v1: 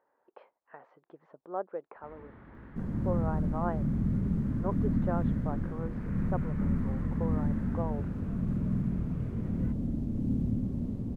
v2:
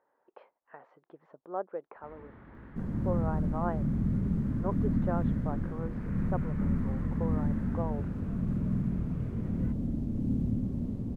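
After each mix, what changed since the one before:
none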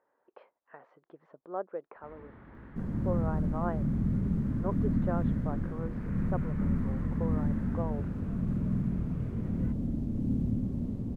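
speech: add bell 840 Hz -3 dB 0.39 oct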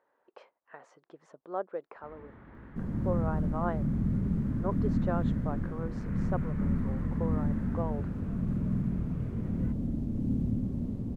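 speech: remove air absorption 410 m

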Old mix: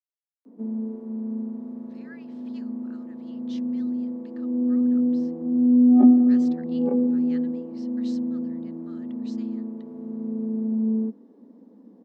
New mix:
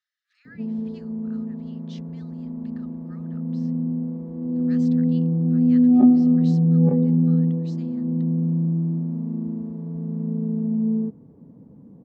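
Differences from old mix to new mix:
speech: entry -1.60 s; background: remove steep high-pass 210 Hz 72 dB/oct

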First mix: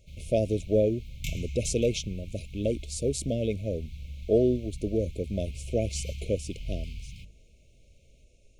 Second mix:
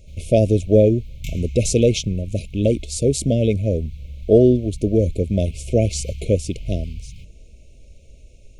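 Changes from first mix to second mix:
speech +8.5 dB; master: add low shelf 200 Hz +6 dB

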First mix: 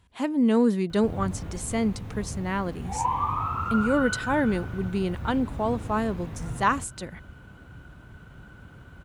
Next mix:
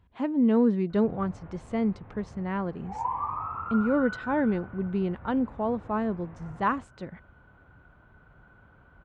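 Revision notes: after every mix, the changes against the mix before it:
background: add three-band isolator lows -12 dB, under 530 Hz, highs -22 dB, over 2500 Hz; master: add tape spacing loss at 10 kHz 33 dB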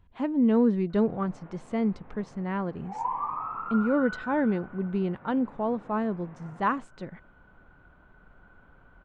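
background: add HPF 150 Hz 24 dB/oct; master: remove HPF 47 Hz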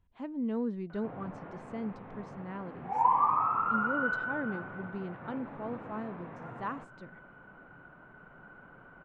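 speech -11.0 dB; background +5.5 dB

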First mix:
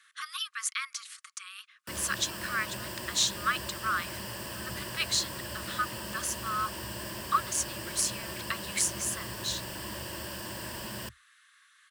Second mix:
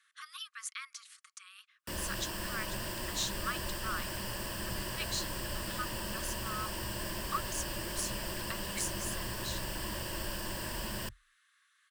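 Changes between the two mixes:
speech -9.0 dB; master: remove HPF 68 Hz 24 dB/oct

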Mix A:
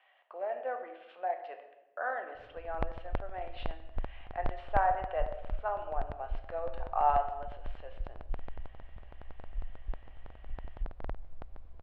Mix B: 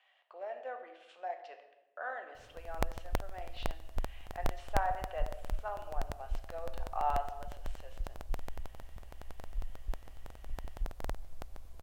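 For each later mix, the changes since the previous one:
speech -7.5 dB; master: remove air absorption 430 m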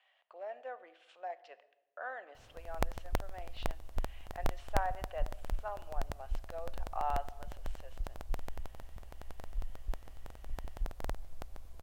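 speech: send -10.0 dB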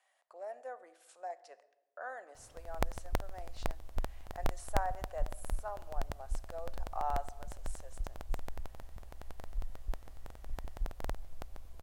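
speech: remove synth low-pass 3000 Hz, resonance Q 3.4

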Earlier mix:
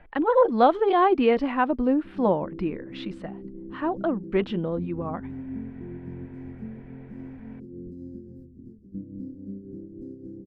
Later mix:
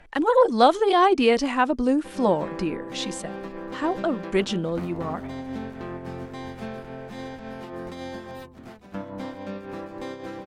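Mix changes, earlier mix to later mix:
background: remove inverse Chebyshev band-stop 640–3700 Hz, stop band 40 dB; master: remove air absorption 430 m

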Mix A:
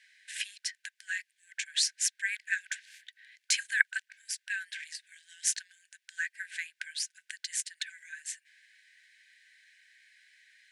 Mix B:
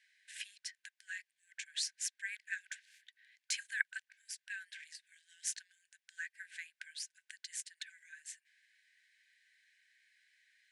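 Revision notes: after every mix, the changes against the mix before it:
speech -9.5 dB; background -10.5 dB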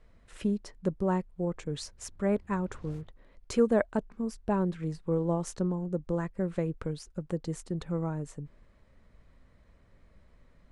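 speech -5.0 dB; master: remove brick-wall FIR high-pass 1500 Hz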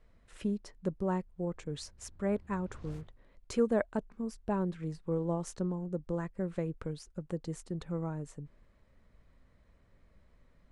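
speech -4.0 dB; reverb: on, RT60 1.5 s

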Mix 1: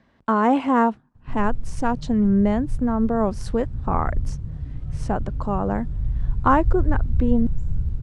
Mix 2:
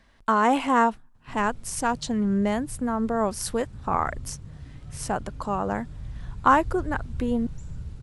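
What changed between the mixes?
speech: remove BPF 150–7700 Hz; master: add tilt +3 dB/oct

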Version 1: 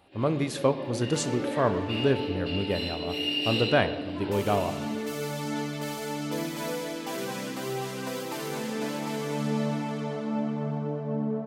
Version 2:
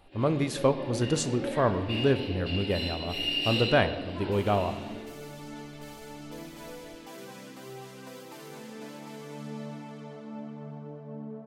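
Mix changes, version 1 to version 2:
second sound -11.0 dB; master: remove HPF 87 Hz

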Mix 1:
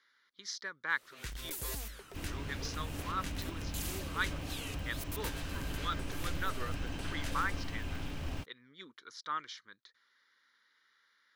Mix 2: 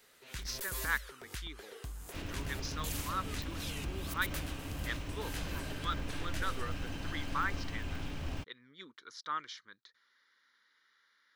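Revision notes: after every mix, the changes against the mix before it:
first sound: entry -0.90 s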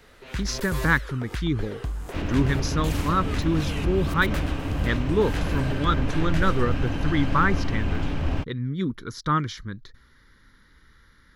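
speech: remove BPF 640–4100 Hz; master: remove pre-emphasis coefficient 0.8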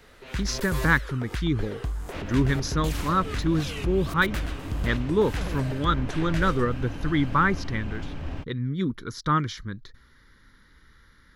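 second sound -8.0 dB

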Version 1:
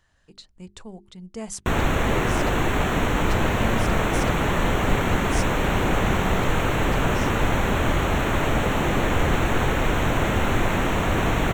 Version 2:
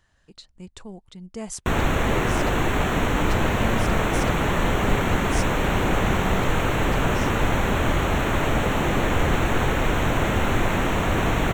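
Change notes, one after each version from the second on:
speech: remove notches 50/100/150/200/250/300/350/400 Hz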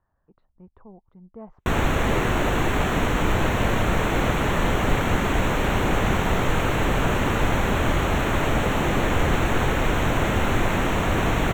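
speech: add ladder low-pass 1300 Hz, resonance 35%

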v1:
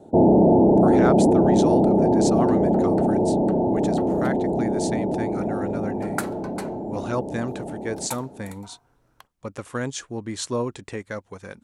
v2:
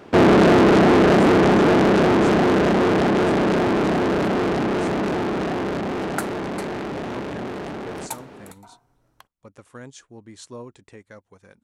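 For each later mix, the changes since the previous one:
speech -12.0 dB; first sound: remove rippled Chebyshev low-pass 900 Hz, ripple 3 dB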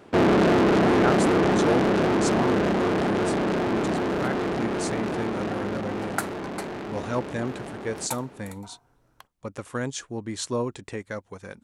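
speech +10.5 dB; first sound -5.5 dB

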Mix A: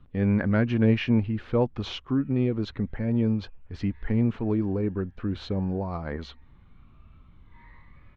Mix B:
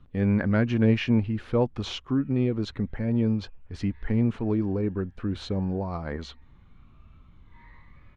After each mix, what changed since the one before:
master: remove LPF 4600 Hz 12 dB/oct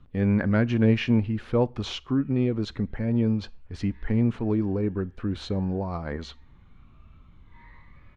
reverb: on, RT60 0.35 s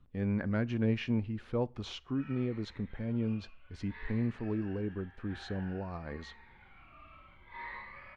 speech -9.5 dB; background +11.5 dB

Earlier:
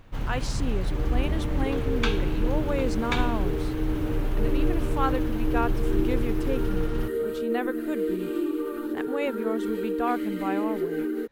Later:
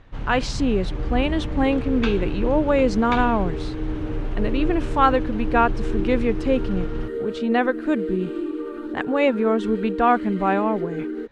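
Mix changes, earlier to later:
speech +10.5 dB; master: add air absorption 99 m

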